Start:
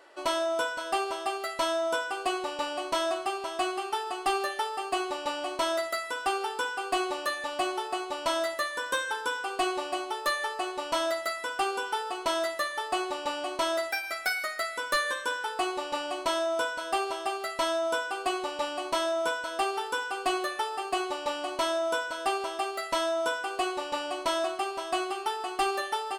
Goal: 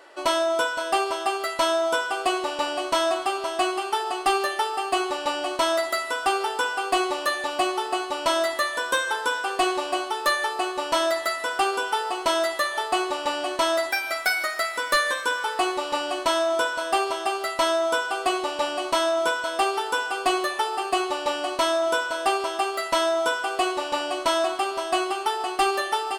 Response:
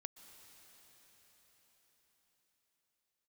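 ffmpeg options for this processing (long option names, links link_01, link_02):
-filter_complex "[0:a]asplit=2[link_01][link_02];[1:a]atrim=start_sample=2205,lowshelf=frequency=180:gain=-6.5[link_03];[link_02][link_03]afir=irnorm=-1:irlink=0,volume=2dB[link_04];[link_01][link_04]amix=inputs=2:normalize=0,volume=1.5dB"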